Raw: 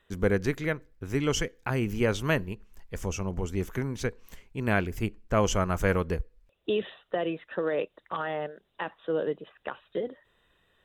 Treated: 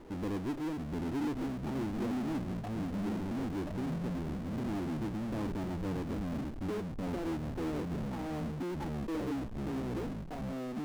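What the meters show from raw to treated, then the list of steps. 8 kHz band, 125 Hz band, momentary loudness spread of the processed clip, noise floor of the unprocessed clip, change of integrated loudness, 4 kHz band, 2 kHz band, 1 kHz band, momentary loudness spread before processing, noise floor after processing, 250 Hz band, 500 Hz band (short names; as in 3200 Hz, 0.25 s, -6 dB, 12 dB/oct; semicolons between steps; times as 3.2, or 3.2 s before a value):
-15.5 dB, -5.5 dB, 3 LU, -73 dBFS, -6.0 dB, -12.0 dB, -14.5 dB, -8.0 dB, 12 LU, -40 dBFS, -0.5 dB, -11.0 dB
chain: vocal tract filter u; echoes that change speed 0.656 s, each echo -3 st, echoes 3; power-law curve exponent 0.35; gain -7.5 dB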